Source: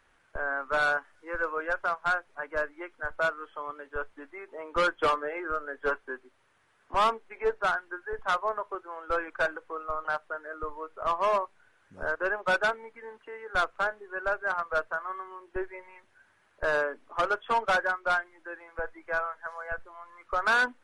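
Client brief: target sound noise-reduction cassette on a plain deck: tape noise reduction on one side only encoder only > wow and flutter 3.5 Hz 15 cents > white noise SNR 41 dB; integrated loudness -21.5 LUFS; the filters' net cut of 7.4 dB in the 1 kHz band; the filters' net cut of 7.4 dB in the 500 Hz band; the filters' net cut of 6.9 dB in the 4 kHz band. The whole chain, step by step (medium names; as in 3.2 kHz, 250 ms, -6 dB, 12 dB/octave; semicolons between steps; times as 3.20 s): peaking EQ 500 Hz -6.5 dB; peaking EQ 1 kHz -8 dB; peaking EQ 4 kHz -8.5 dB; tape noise reduction on one side only encoder only; wow and flutter 3.5 Hz 15 cents; white noise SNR 41 dB; trim +15 dB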